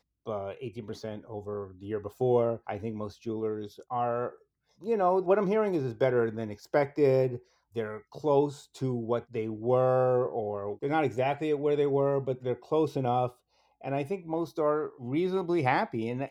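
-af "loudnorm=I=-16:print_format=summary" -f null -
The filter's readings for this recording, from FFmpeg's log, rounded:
Input Integrated:    -29.8 LUFS
Input True Peak:     -11.4 dBTP
Input LRA:             3.6 LU
Input Threshold:     -40.1 LUFS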